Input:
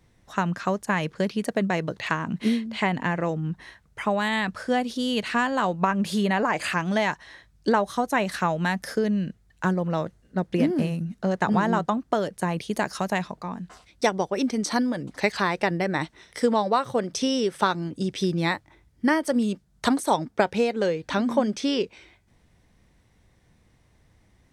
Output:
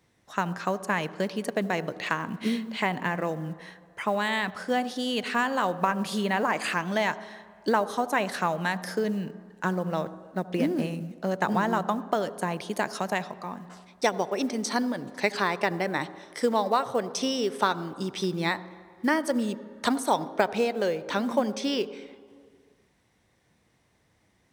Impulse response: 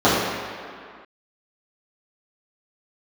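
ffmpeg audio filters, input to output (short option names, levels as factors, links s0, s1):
-filter_complex "[0:a]highpass=f=240:p=1,acrusher=bits=8:mode=log:mix=0:aa=0.000001,asplit=2[s0][s1];[1:a]atrim=start_sample=2205,adelay=71[s2];[s1][s2]afir=irnorm=-1:irlink=0,volume=0.00841[s3];[s0][s3]amix=inputs=2:normalize=0,volume=0.841"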